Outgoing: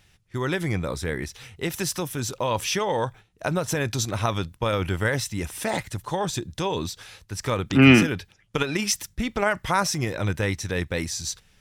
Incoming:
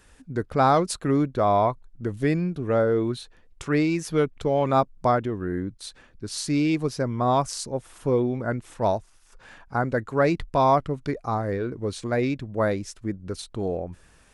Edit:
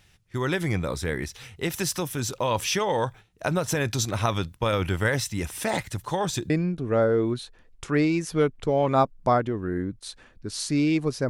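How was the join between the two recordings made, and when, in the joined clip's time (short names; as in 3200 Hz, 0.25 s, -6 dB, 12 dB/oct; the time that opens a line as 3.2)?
outgoing
6.5 switch to incoming from 2.28 s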